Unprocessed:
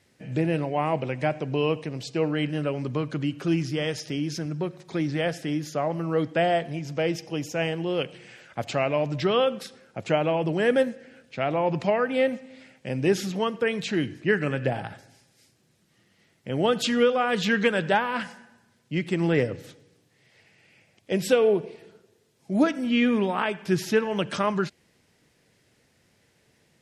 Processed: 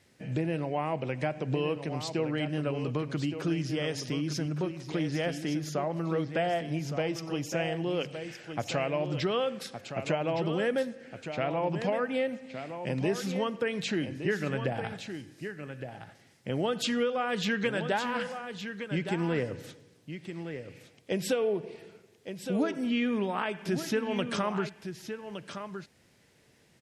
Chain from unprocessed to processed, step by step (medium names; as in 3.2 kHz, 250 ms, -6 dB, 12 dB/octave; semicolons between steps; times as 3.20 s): compression 2.5:1, threshold -29 dBFS, peak gain reduction 9.5 dB; on a send: delay 1165 ms -9 dB